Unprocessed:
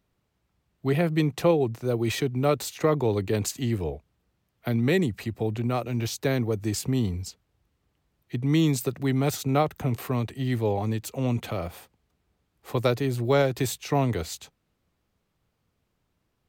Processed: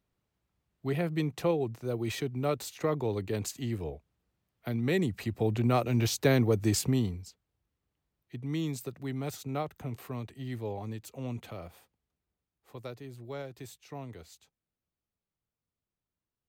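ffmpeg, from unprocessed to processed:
ffmpeg -i in.wav -af "volume=1dB,afade=type=in:start_time=4.81:duration=0.94:silence=0.398107,afade=type=out:start_time=6.77:duration=0.45:silence=0.251189,afade=type=out:start_time=11.37:duration=1.38:silence=0.421697" out.wav

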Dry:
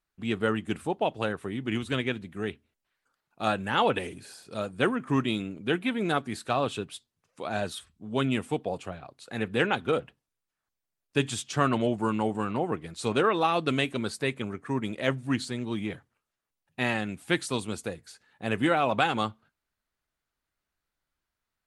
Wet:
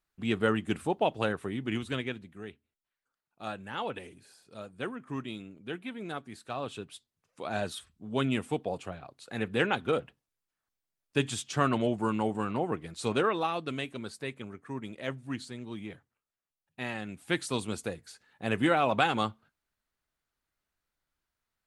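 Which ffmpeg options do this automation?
ffmpeg -i in.wav -af "volume=16.5dB,afade=type=out:start_time=1.34:duration=1.11:silence=0.281838,afade=type=in:start_time=6.43:duration=1.14:silence=0.354813,afade=type=out:start_time=13.11:duration=0.53:silence=0.473151,afade=type=in:start_time=16.93:duration=0.71:silence=0.421697" out.wav

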